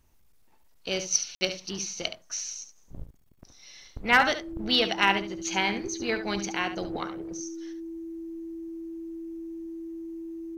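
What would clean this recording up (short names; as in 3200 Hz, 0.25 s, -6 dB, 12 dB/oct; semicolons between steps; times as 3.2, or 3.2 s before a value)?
clip repair -9.5 dBFS; notch 330 Hz, Q 30; room tone fill 1.35–1.41; inverse comb 71 ms -10.5 dB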